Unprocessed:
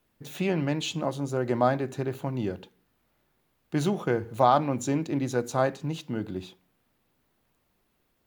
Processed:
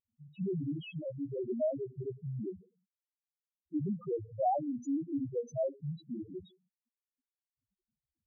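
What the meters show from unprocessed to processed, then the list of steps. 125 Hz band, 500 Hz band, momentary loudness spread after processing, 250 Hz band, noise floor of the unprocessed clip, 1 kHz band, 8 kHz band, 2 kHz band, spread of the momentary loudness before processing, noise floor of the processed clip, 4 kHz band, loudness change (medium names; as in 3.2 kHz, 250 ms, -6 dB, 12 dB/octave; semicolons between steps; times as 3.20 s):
-9.5 dB, -8.0 dB, 10 LU, -7.5 dB, -72 dBFS, -11.0 dB, under -20 dB, under -20 dB, 11 LU, under -85 dBFS, under -15 dB, -9.0 dB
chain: loudest bins only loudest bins 1; high-pass 77 Hz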